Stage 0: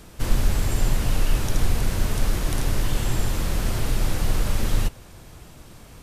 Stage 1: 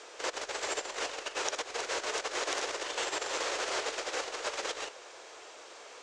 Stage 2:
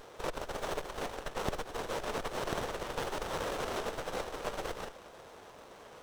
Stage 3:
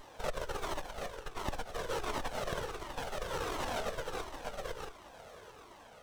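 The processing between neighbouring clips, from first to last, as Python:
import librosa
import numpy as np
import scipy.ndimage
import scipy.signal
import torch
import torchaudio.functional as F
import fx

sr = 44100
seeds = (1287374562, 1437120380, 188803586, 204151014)

y1 = fx.over_compress(x, sr, threshold_db=-22.0, ratio=-1.0)
y1 = scipy.signal.sosfilt(scipy.signal.ellip(3, 1.0, 40, [440.0, 7000.0], 'bandpass', fs=sr, output='sos'), y1)
y2 = fx.running_max(y1, sr, window=17)
y3 = fx.tremolo_shape(y2, sr, shape='triangle', hz=0.61, depth_pct=45)
y3 = fx.comb_cascade(y3, sr, direction='falling', hz=1.4)
y3 = y3 * 10.0 ** (5.0 / 20.0)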